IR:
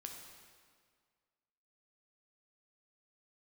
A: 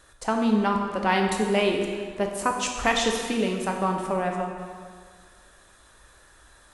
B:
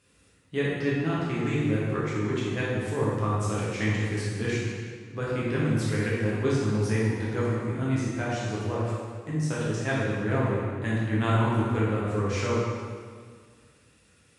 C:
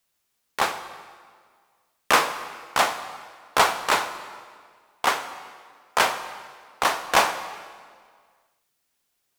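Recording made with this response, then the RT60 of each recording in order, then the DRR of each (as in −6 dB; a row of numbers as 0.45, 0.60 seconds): A; 1.9, 1.9, 1.8 seconds; 1.5, −7.5, 9.5 decibels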